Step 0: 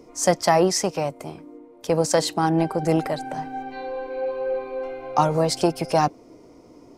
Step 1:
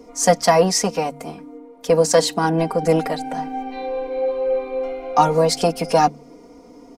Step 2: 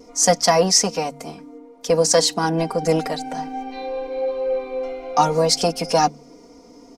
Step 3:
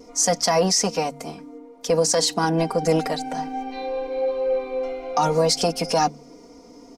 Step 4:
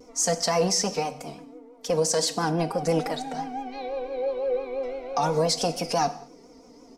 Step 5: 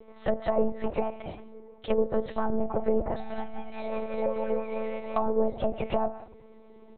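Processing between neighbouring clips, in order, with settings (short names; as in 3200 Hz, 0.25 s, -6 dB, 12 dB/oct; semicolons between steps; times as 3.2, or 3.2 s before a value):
comb 4.2 ms, depth 91%; de-hum 73.47 Hz, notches 3; gain +1.5 dB
bell 5600 Hz +8 dB 1.1 oct; vibrato 0.56 Hz 11 cents; gain -2 dB
limiter -10 dBFS, peak gain reduction 7.5 dB
vibrato 5.9 Hz 90 cents; reverb, pre-delay 3 ms, DRR 11 dB; gain -4.5 dB
monotone LPC vocoder at 8 kHz 220 Hz; treble ducked by the level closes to 660 Hz, closed at -20.5 dBFS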